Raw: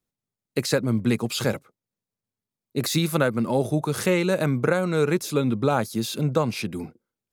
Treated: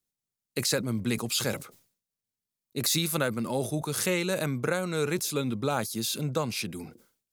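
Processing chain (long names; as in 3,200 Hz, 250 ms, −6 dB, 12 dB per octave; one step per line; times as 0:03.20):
high-shelf EQ 2,700 Hz +11 dB
level that may fall only so fast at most 120 dB per second
level −7.5 dB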